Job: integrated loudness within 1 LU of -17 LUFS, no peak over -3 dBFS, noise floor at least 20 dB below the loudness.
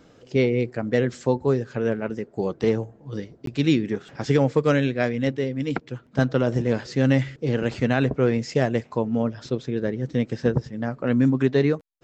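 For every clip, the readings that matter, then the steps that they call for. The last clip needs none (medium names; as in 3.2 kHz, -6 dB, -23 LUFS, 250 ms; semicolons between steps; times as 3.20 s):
dropouts 1; longest dropout 13 ms; loudness -24.0 LUFS; peak level -7.0 dBFS; loudness target -17.0 LUFS
-> interpolate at 3.46 s, 13 ms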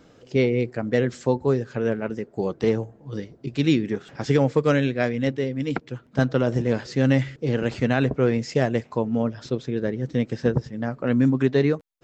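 dropouts 0; loudness -24.0 LUFS; peak level -7.0 dBFS; loudness target -17.0 LUFS
-> trim +7 dB; peak limiter -3 dBFS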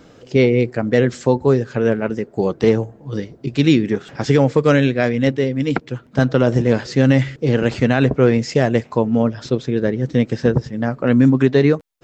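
loudness -17.5 LUFS; peak level -3.0 dBFS; noise floor -47 dBFS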